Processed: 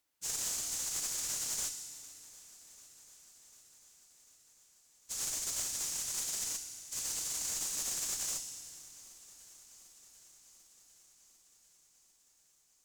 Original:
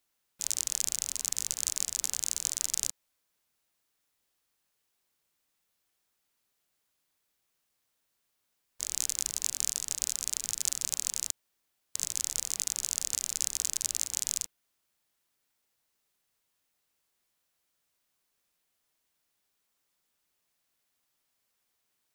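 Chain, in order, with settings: plain phase-vocoder stretch 0.58×; FDN reverb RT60 2 s, low-frequency decay 1.25×, high-frequency decay 0.85×, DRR 5 dB; one-sided clip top -36 dBFS; on a send: shuffle delay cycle 746 ms, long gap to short 1.5:1, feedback 68%, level -20.5 dB

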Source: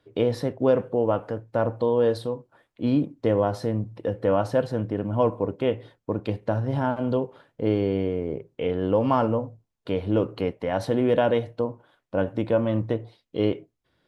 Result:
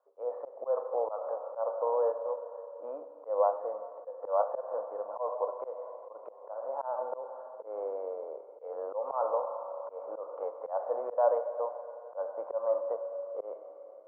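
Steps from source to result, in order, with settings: elliptic band-pass 530–1200 Hz, stop band 70 dB; Schroeder reverb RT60 3.4 s, combs from 30 ms, DRR 10 dB; slow attack 163 ms

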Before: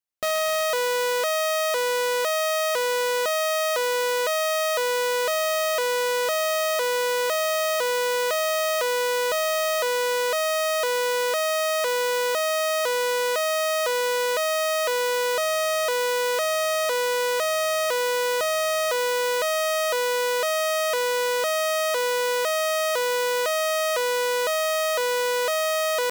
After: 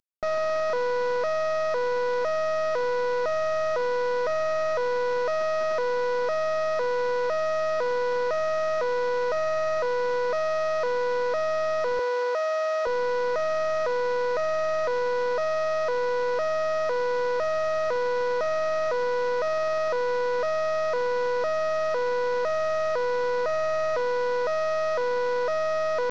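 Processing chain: CVSD coder 32 kbps; 11.99–12.87 s: high-pass 370 Hz 24 dB/octave

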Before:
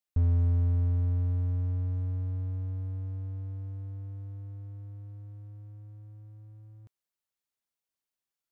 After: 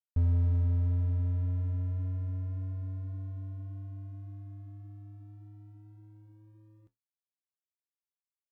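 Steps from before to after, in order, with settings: crossover distortion -53 dBFS; flange 1.8 Hz, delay 8.5 ms, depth 4.6 ms, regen -60%; trim +2 dB

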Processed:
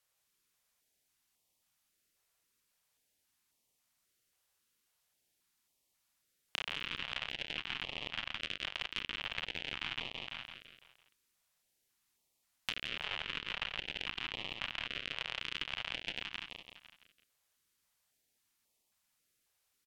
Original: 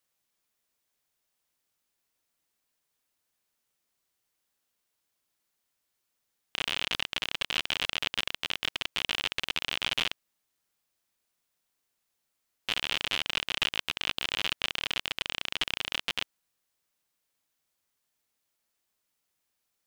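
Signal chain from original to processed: low-pass that closes with the level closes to 2.7 kHz, closed at -29 dBFS; on a send: feedback delay 168 ms, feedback 47%, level -6 dB; on the sum: compression, threshold -34 dBFS, peak gain reduction 9.5 dB; step-sequenced notch 3.7 Hz 250–1500 Hz; trim +1 dB

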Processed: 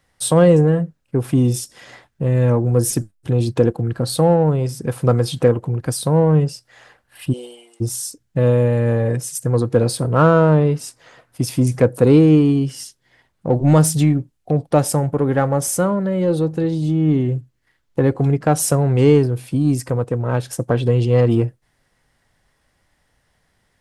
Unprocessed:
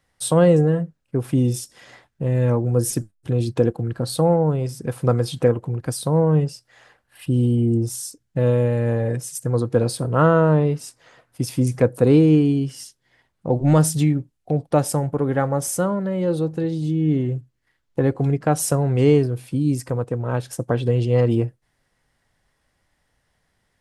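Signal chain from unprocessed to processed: 7.32–7.80 s: high-pass 410 Hz -> 1.2 kHz 24 dB/octave; in parallel at -9.5 dB: saturation -21.5 dBFS, distortion -7 dB; on the sum: trim +2 dB

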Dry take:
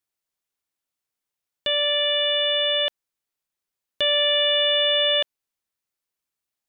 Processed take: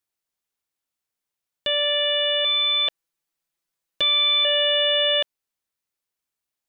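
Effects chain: 2.44–4.45 s: comb 6 ms, depth 80%

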